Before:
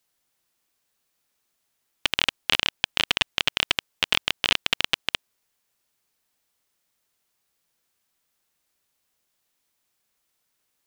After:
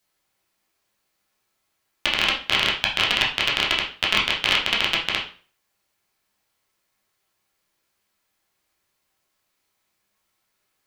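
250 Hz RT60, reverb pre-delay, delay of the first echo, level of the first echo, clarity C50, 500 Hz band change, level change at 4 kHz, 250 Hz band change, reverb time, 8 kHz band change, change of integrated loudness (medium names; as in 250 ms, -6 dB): 0.40 s, 8 ms, no echo, no echo, 7.0 dB, +4.5 dB, +2.5 dB, +4.5 dB, 0.40 s, 0.0 dB, +3.0 dB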